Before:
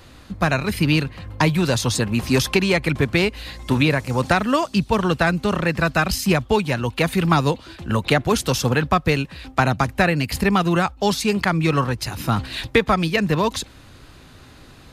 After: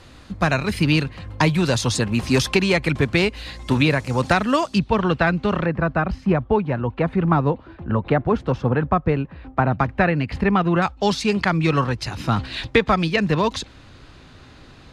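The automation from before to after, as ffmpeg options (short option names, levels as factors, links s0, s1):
-af "asetnsamples=n=441:p=0,asendcmd='4.79 lowpass f 3300;5.66 lowpass f 1300;9.72 lowpass f 2200;10.82 lowpass f 5900',lowpass=9100"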